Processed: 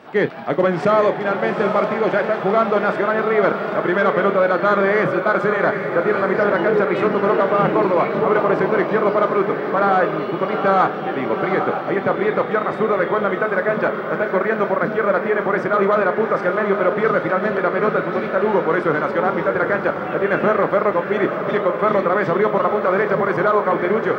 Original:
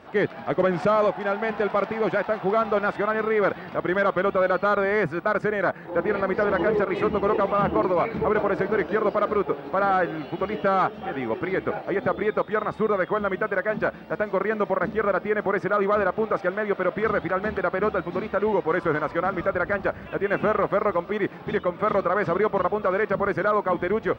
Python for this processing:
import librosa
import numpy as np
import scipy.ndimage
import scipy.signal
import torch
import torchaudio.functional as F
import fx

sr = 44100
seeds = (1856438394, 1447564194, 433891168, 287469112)

y = scipy.signal.sosfilt(scipy.signal.butter(4, 120.0, 'highpass', fs=sr, output='sos'), x)
y = fx.doubler(y, sr, ms=31.0, db=-12)
y = fx.echo_diffused(y, sr, ms=822, feedback_pct=46, wet_db=-6.0)
y = F.gain(torch.from_numpy(y), 4.5).numpy()